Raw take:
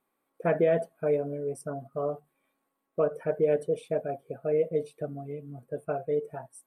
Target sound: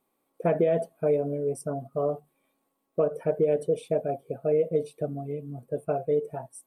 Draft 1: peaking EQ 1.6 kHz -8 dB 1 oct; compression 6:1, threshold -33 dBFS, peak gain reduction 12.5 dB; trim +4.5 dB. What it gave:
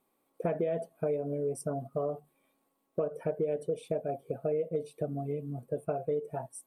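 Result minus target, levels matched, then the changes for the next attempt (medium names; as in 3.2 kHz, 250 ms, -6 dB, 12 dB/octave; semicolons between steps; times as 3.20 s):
compression: peak gain reduction +8 dB
change: compression 6:1, threshold -23.5 dBFS, peak gain reduction 4.5 dB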